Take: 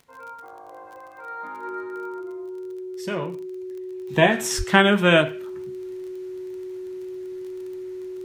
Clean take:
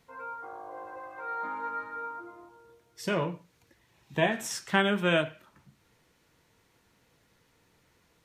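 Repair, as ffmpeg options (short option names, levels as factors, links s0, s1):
-filter_complex "[0:a]adeclick=t=4,bandreject=f=370:w=30,asplit=3[s0][s1][s2];[s0]afade=t=out:st=4.57:d=0.02[s3];[s1]highpass=f=140:w=0.5412,highpass=f=140:w=1.3066,afade=t=in:st=4.57:d=0.02,afade=t=out:st=4.69:d=0.02[s4];[s2]afade=t=in:st=4.69:d=0.02[s5];[s3][s4][s5]amix=inputs=3:normalize=0,asetnsamples=n=441:p=0,asendcmd='4.08 volume volume -9dB',volume=1"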